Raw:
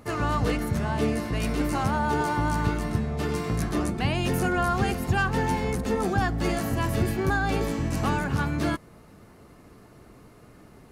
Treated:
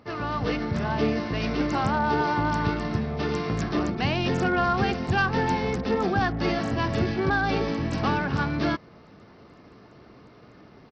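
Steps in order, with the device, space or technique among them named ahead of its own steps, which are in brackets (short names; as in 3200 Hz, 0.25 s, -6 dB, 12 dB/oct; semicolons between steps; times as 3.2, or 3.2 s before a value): Bluetooth headset (HPF 120 Hz 6 dB/oct; AGC gain up to 5 dB; downsampling 16000 Hz; gain -3 dB; SBC 64 kbps 44100 Hz)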